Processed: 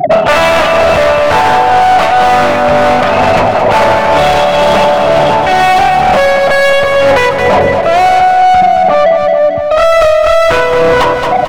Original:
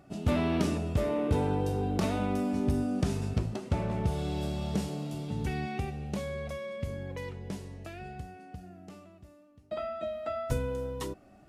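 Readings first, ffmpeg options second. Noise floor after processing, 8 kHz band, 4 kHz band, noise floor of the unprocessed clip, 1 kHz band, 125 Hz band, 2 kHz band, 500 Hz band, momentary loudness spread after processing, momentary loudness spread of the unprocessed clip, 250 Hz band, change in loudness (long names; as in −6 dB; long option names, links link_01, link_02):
−12 dBFS, +21.5 dB, +28.5 dB, −57 dBFS, +34.0 dB, +10.0 dB, +33.0 dB, +28.0 dB, 2 LU, 15 LU, +12.0 dB, +24.5 dB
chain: -filter_complex "[0:a]acrossover=split=3800[link_01][link_02];[link_02]acompressor=threshold=-56dB:ratio=4:attack=1:release=60[link_03];[link_01][link_03]amix=inputs=2:normalize=0,afftfilt=real='re*gte(hypot(re,im),0.00631)':imag='im*gte(hypot(re,im),0.00631)':win_size=1024:overlap=0.75,lowshelf=frequency=480:width_type=q:width=3:gain=-10,acrossover=split=1200[link_04][link_05];[link_04]acompressor=threshold=-38dB:ratio=16[link_06];[link_06][link_05]amix=inputs=2:normalize=0,aeval=exprs='clip(val(0),-1,0.00398)':channel_layout=same,tremolo=f=2.1:d=0.89,asplit=2[link_07][link_08];[link_08]highpass=frequency=720:poles=1,volume=36dB,asoftclip=type=tanh:threshold=-27.5dB[link_09];[link_07][link_09]amix=inputs=2:normalize=0,lowpass=frequency=1600:poles=1,volume=-6dB,aecho=1:1:222|444|666|888|1110|1332|1554:0.376|0.214|0.122|0.0696|0.0397|0.0226|0.0129,alimiter=level_in=32.5dB:limit=-1dB:release=50:level=0:latency=1,volume=-1dB"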